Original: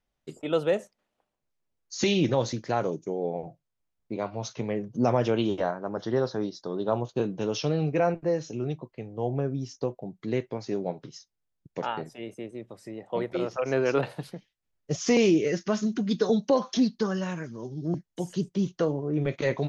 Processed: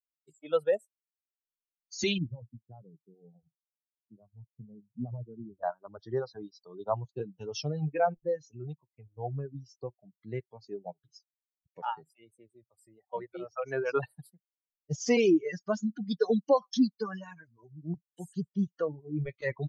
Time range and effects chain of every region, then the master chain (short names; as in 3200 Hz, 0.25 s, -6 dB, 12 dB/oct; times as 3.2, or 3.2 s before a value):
2.18–5.63 band-pass 180 Hz, Q 1.2 + air absorption 340 m
whole clip: per-bin expansion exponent 2; reverb removal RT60 0.81 s; bell 860 Hz +3 dB 1.9 oct